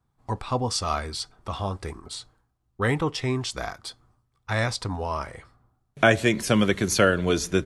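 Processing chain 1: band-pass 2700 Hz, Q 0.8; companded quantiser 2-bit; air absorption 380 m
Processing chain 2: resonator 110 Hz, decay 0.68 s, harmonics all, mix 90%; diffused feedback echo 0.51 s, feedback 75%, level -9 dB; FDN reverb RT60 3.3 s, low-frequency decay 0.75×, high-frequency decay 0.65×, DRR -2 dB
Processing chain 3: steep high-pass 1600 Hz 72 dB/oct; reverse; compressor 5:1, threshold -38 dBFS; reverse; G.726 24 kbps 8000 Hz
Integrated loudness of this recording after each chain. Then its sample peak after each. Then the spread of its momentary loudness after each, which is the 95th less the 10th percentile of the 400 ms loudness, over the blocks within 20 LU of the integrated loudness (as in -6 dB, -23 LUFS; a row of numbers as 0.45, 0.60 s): -33.0, -30.5, -44.0 LUFS; -5.0, -14.0, -24.5 dBFS; 15, 13, 12 LU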